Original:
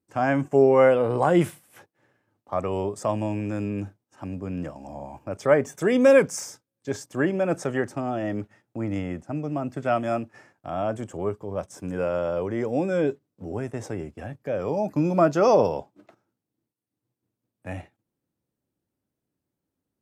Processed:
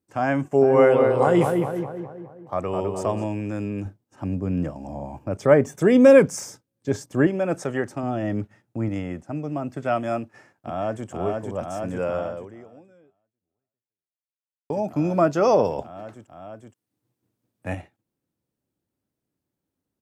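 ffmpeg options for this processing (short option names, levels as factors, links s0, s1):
-filter_complex "[0:a]asplit=3[s0][s1][s2];[s0]afade=t=out:st=0.61:d=0.02[s3];[s1]asplit=2[s4][s5];[s5]adelay=208,lowpass=f=2000:p=1,volume=0.631,asplit=2[s6][s7];[s7]adelay=208,lowpass=f=2000:p=1,volume=0.54,asplit=2[s8][s9];[s9]adelay=208,lowpass=f=2000:p=1,volume=0.54,asplit=2[s10][s11];[s11]adelay=208,lowpass=f=2000:p=1,volume=0.54,asplit=2[s12][s13];[s13]adelay=208,lowpass=f=2000:p=1,volume=0.54,asplit=2[s14][s15];[s15]adelay=208,lowpass=f=2000:p=1,volume=0.54,asplit=2[s16][s17];[s17]adelay=208,lowpass=f=2000:p=1,volume=0.54[s18];[s4][s6][s8][s10][s12][s14][s16][s18]amix=inputs=8:normalize=0,afade=t=in:st=0.61:d=0.02,afade=t=out:st=3.24:d=0.02[s19];[s2]afade=t=in:st=3.24:d=0.02[s20];[s3][s19][s20]amix=inputs=3:normalize=0,asettb=1/sr,asplit=3[s21][s22][s23];[s21]atrim=end=3.854[s24];[s22]atrim=start=3.85:end=7.27,asetpts=PTS-STARTPTS,afade=t=in:d=0.004:c=qsin,afade=t=out:st=3.416:d=0.004:c=qsin,lowshelf=f=450:g=8[s25];[s23]atrim=start=7.266[s26];[s24][s25]acrossfade=d=0.004:c1=hsin:c2=qsin[s27];[s27][s26]acrossfade=d=0.004:c1=qsin:c2=hsin,asettb=1/sr,asplit=3[s28][s29][s30];[s28]atrim=end=8.034[s31];[s29]atrim=start=8.03:end=8.89,asetpts=PTS-STARTPTS,afade=t=in:d=0.004:c=qsin,afade=t=out:st=0.856:d=0.004:c=qsin,bass=f=250:g=6,treble=f=4000:g=0[s32];[s30]atrim=start=8.886[s33];[s31][s32]acrossfade=d=0.004:c1=hsin:c2=qsin[s34];[s34][s33]acrossfade=d=0.004:c1=qsin:c2=hsin,asplit=2[s35][s36];[s36]afade=t=in:st=10.2:d=0.01,afade=t=out:st=11.09:d=0.01,aecho=0:1:470|940|1410|1880|2350|2820|3290|3760|4230|4700|5170|5640:0.749894|0.63741|0.541799|0.460529|0.391449|0.332732|0.282822|0.240399|0.204339|0.173688|0.147635|0.12549[s37];[s35][s37]amix=inputs=2:normalize=0,asettb=1/sr,asplit=3[s38][s39][s40];[s38]atrim=end=15.784[s41];[s39]atrim=start=15.78:end=17.75,asetpts=PTS-STARTPTS,afade=t=in:d=0.004:c=qsin,afade=t=out:st=1.966:d=0.004:c=qsin,acontrast=33[s42];[s40]atrim=start=17.746[s43];[s41][s42]acrossfade=d=0.004:c1=hsin:c2=qsin[s44];[s44][s43]acrossfade=d=0.004:c1=qsin:c2=hsin,asplit=2[s45][s46];[s45]atrim=end=14.7,asetpts=PTS-STARTPTS,afade=t=out:st=12.17:d=2.53:c=exp[s47];[s46]atrim=start=14.7,asetpts=PTS-STARTPTS,afade=t=in:d=0.004:c=hsin[s48];[s47][s48]concat=n=2:v=0:a=1"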